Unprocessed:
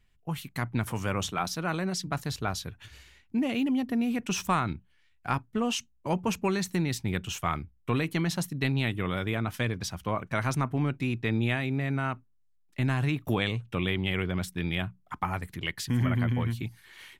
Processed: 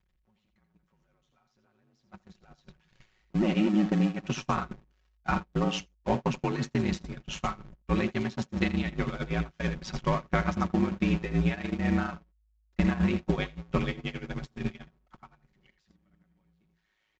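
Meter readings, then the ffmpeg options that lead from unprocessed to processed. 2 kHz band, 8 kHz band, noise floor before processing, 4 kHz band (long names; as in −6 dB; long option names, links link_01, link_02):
−3.5 dB, −10.0 dB, −65 dBFS, −5.5 dB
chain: -af "aeval=exprs='val(0)+0.5*0.0355*sgn(val(0))':channel_layout=same,acompressor=threshold=-28dB:ratio=16,aresample=16000,acrusher=bits=6:mode=log:mix=0:aa=0.000001,aresample=44100,aeval=exprs='val(0)*sin(2*PI*53*n/s)':channel_layout=same,dynaudnorm=framelen=280:gausssize=17:maxgain=8dB,aecho=1:1:83:0.376,acrusher=bits=10:mix=0:aa=0.000001,aecho=1:1:5.4:0.49,agate=range=-37dB:threshold=-24dB:ratio=16:detection=peak,lowpass=frequency=2500:poles=1"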